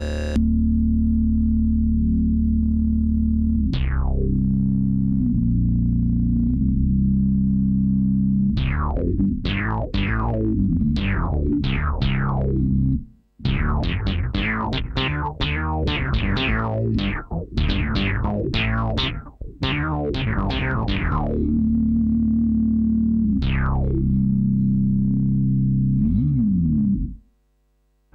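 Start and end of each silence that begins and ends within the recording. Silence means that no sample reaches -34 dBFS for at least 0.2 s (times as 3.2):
13.04–13.41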